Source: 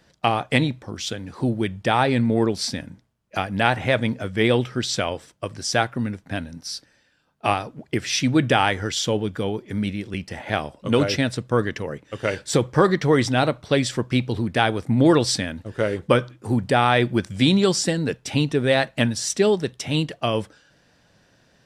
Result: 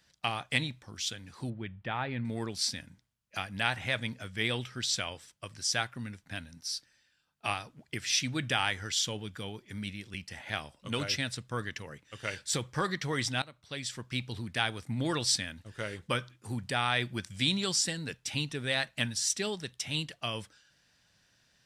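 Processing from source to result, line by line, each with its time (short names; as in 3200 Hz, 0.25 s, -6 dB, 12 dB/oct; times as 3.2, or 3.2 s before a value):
1.5–2.25 air absorption 460 m
13.42–14.28 fade in, from -19 dB
whole clip: passive tone stack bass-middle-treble 5-5-5; gain +2.5 dB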